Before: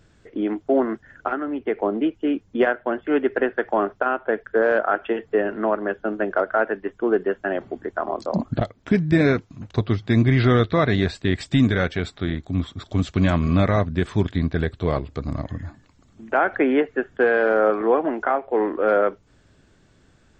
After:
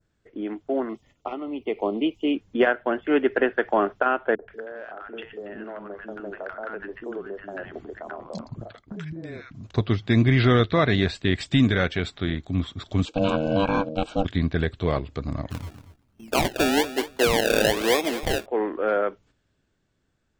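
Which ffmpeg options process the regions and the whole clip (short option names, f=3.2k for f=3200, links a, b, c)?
-filter_complex "[0:a]asettb=1/sr,asplit=3[a][b][c];[a]atrim=end=0.894[d];[b]atrim=start=0.89:end=2.35,asetpts=PTS-STARTPTS,afade=t=in:d=0.004:c=qsin,afade=t=out:st=1.456:d=0.004:c=qsin,asuperstop=centerf=1600:order=4:qfactor=1.5,highshelf=f=3.1k:g=10[e];[c]atrim=start=2.346[f];[d][e]acrossfade=d=0.004:c1=hsin:c2=qsin[g];[g][f]acrossfade=d=0.004:c1=qsin:c2=hsin,asettb=1/sr,asplit=3[h][i][j];[h]atrim=end=4.354[k];[i]atrim=start=4.35:end=9.67,asetpts=PTS-STARTPTS,afade=t=in:d=0.004:c=qsin,afade=t=out:st=5.316:d=0.004:c=qsin,acompressor=threshold=-32dB:ratio=5:attack=3.2:release=140:knee=1:detection=peak,acrossover=split=310|1000[l][m][n];[m]adelay=40[o];[n]adelay=130[p];[l][o][p]amix=inputs=3:normalize=0,atrim=end_sample=234612[q];[j]atrim=start=9.666[r];[k][q]acrossfade=d=0.004:c1=hsin:c2=qsin[s];[s][r]acrossfade=d=0.004:c1=qsin:c2=hsin,asettb=1/sr,asplit=3[t][u][v];[t]atrim=end=13.054[w];[u]atrim=start=13.05:end=14.25,asetpts=PTS-STARTPTS,afade=t=in:d=0.004:c=qsin,afade=t=out:st=1.196:d=0.004:c=qsin,aeval=exprs='val(0)*sin(2*PI*390*n/s)':c=same,asuperstop=centerf=1900:order=20:qfactor=3.3[x];[v]atrim=start=14.246[y];[w][x]acrossfade=d=0.004:c1=hsin:c2=qsin[z];[z][y]acrossfade=d=0.004:c1=qsin:c2=hsin,asettb=1/sr,asplit=3[aa][ab][ac];[aa]atrim=end=15.504[ad];[ab]atrim=start=15.5:end=18.46,asetpts=PTS-STARTPTS,afade=t=in:d=0.004:c=qsin,afade=t=out:st=2.956:d=0.004:c=qsin,lowpass=2.8k,acrusher=samples=29:mix=1:aa=0.000001:lfo=1:lforange=29:lforate=1.1,aecho=1:1:234|468:0.2|0.0319,atrim=end_sample=130536[ae];[ac]atrim=start=18.456[af];[ad][ae]acrossfade=d=0.004:c1=hsin:c2=qsin[ag];[ag][af]acrossfade=d=0.004:c1=qsin:c2=hsin,agate=range=-9dB:threshold=-47dB:ratio=16:detection=peak,adynamicequalizer=threshold=0.00631:dfrequency=3000:dqfactor=1.3:tfrequency=3000:tqfactor=1.3:attack=5:release=100:ratio=0.375:range=2.5:mode=boostabove:tftype=bell,dynaudnorm=f=290:g=13:m=11.5dB,volume=-7dB"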